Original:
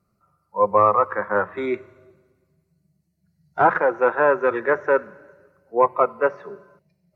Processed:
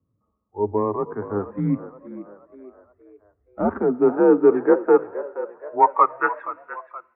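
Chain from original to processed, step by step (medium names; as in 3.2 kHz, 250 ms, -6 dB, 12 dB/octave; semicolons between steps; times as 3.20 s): band-pass sweep 270 Hz -> 2.3 kHz, 3.60–6.73 s; mistuned SSB -99 Hz 180–3300 Hz; frequency-shifting echo 473 ms, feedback 47%, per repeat +52 Hz, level -14.5 dB; trim +7.5 dB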